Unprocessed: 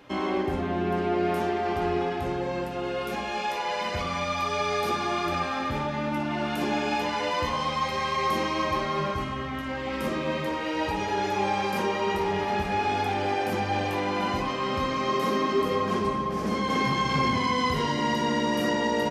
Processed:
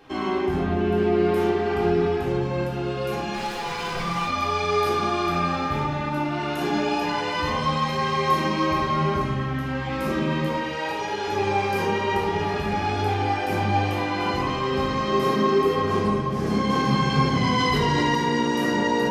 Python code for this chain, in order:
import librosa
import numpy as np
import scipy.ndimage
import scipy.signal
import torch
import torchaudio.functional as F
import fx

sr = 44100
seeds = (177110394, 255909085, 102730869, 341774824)

y = fx.lower_of_two(x, sr, delay_ms=5.8, at=(3.33, 4.26), fade=0.02)
y = fx.highpass(y, sr, hz=540.0, slope=6, at=(10.57, 11.28))
y = fx.room_shoebox(y, sr, seeds[0], volume_m3=870.0, walls='furnished', distance_m=3.6)
y = fx.env_flatten(y, sr, amount_pct=100, at=(17.43, 18.15))
y = y * librosa.db_to_amplitude(-2.0)